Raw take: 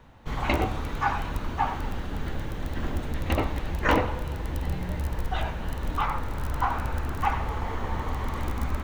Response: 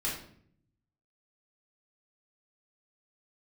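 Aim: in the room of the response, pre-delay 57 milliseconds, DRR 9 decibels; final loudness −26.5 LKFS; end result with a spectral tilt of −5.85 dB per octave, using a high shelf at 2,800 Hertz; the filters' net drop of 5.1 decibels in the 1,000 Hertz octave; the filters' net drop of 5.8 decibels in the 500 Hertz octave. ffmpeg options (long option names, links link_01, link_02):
-filter_complex "[0:a]equalizer=frequency=500:width_type=o:gain=-6,equalizer=frequency=1000:width_type=o:gain=-3.5,highshelf=frequency=2800:gain=-7.5,asplit=2[link_01][link_02];[1:a]atrim=start_sample=2205,adelay=57[link_03];[link_02][link_03]afir=irnorm=-1:irlink=0,volume=-14dB[link_04];[link_01][link_04]amix=inputs=2:normalize=0,volume=5dB"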